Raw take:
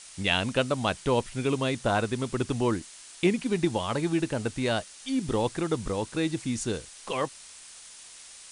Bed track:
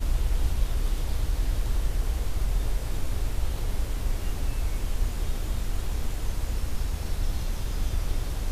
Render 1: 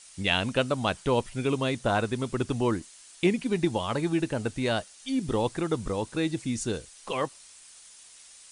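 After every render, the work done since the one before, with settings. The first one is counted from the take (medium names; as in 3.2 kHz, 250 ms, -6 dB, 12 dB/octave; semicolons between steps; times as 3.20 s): noise reduction 6 dB, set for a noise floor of -48 dBFS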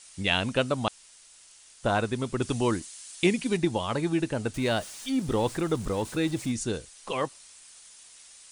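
0.88–1.83 s: room tone; 2.42–3.57 s: treble shelf 2.8 kHz +7.5 dB; 4.54–6.52 s: jump at every zero crossing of -40 dBFS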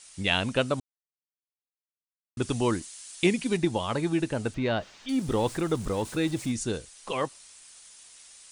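0.80–2.37 s: mute; 4.54–5.09 s: distance through air 190 m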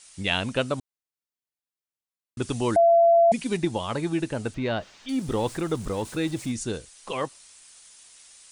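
2.76–3.32 s: bleep 677 Hz -13.5 dBFS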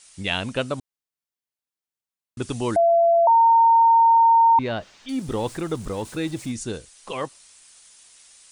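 3.27–4.59 s: bleep 917 Hz -11.5 dBFS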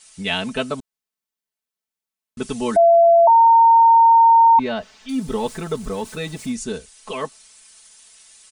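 comb 4.6 ms, depth 88%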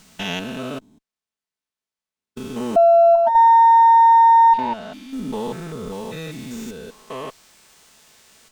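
spectrogram pixelated in time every 200 ms; sliding maximum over 3 samples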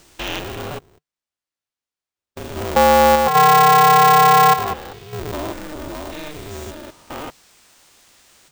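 polarity switched at an audio rate 150 Hz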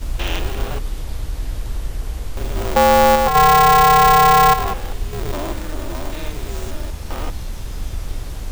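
add bed track +1.5 dB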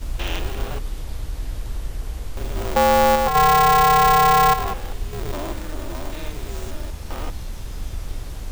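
trim -3.5 dB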